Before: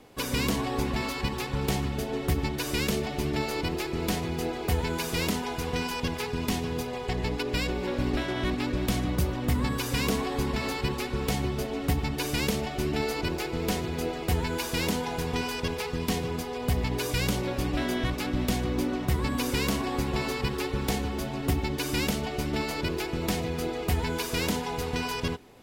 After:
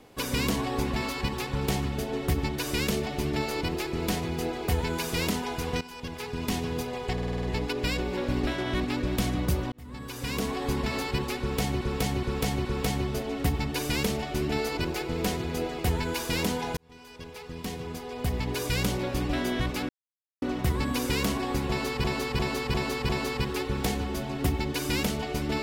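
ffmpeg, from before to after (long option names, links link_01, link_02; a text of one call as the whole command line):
ffmpeg -i in.wav -filter_complex "[0:a]asplit=19[link_01][link_02][link_03][link_04][link_05][link_06][link_07][link_08][link_09][link_10][link_11][link_12][link_13][link_14][link_15][link_16][link_17][link_18][link_19];[link_01]atrim=end=5.81,asetpts=PTS-STARTPTS,afade=type=out:start_time=5.806:duration=0.004:curve=hsin:silence=0.16788[link_20];[link_02]atrim=start=5.81:end=7.182,asetpts=PTS-STARTPTS,afade=type=in:duration=0.78:silence=0.16788[link_21];[link_03]atrim=start=7.128:end=7.182[link_22];[link_04]atrim=start=7.128:end=7.182[link_23];[link_05]atrim=start=7.128:end=7.182[link_24];[link_06]atrim=start=7.128:end=7.182[link_25];[link_07]atrim=start=7.128:end=7.182[link_26];[link_08]atrim=start=7.128:end=9.42,asetpts=PTS-STARTPTS,afade=type=out:start_time=2.288:duration=0.004:curve=hsin[link_27];[link_09]atrim=start=9.42:end=11.512,asetpts=PTS-STARTPTS,afade=type=in:duration=0.98[link_28];[link_10]atrim=start=11.088:end=11.512[link_29];[link_11]atrim=start=11.088:end=11.512[link_30];[link_12]atrim=start=11.088:end=15.21,asetpts=PTS-STARTPTS,afade=type=out:start_time=4.118:duration=0.004:curve=hsin[link_31];[link_13]atrim=start=15.21:end=18.33,asetpts=PTS-STARTPTS,afade=type=in:duration=2,afade=type=out:start_time=3.116:duration=0.004:curve=hsin[link_32];[link_14]atrim=start=18.33:end=18.86,asetpts=PTS-STARTPTS,volume=0[link_33];[link_15]atrim=start=18.86:end=20.482,asetpts=PTS-STARTPTS,afade=type=in:duration=0.004:curve=hsin[link_34];[link_16]atrim=start=20.128:end=20.482[link_35];[link_17]atrim=start=20.128:end=20.482[link_36];[link_18]atrim=start=20.128:end=20.482[link_37];[link_19]atrim=start=20.128[link_38];[link_20][link_21]concat=n=2:v=0:a=1[link_39];[link_39][link_22]acrossfade=duration=0.004:curve1=hsin:curve2=hsin[link_40];[link_40][link_23]acrossfade=duration=0.004:curve1=hsin:curve2=hsin[link_41];[link_41][link_24]acrossfade=duration=0.004:curve1=hsin:curve2=hsin[link_42];[link_42][link_25]acrossfade=duration=0.004:curve1=hsin:curve2=hsin[link_43];[link_43][link_26]acrossfade=duration=0.004:curve1=hsin:curve2=hsin[link_44];[link_27][link_28]concat=n=2:v=0:a=1[link_45];[link_44][link_45]acrossfade=duration=0.004:curve1=hsin:curve2=hsin[link_46];[link_46][link_29]acrossfade=duration=0.004:curve1=hsin:curve2=hsin[link_47];[link_47][link_30]acrossfade=duration=0.004:curve1=hsin:curve2=hsin[link_48];[link_31][link_32][link_33][link_34]concat=n=4:v=0:a=1[link_49];[link_48][link_49]acrossfade=duration=0.004:curve1=hsin:curve2=hsin[link_50];[link_50][link_35]acrossfade=duration=0.004:curve1=hsin:curve2=hsin[link_51];[link_51][link_36]acrossfade=duration=0.004:curve1=hsin:curve2=hsin[link_52];[link_52][link_37]acrossfade=duration=0.004:curve1=hsin:curve2=hsin[link_53];[link_53][link_38]acrossfade=duration=0.004:curve1=hsin:curve2=hsin" out.wav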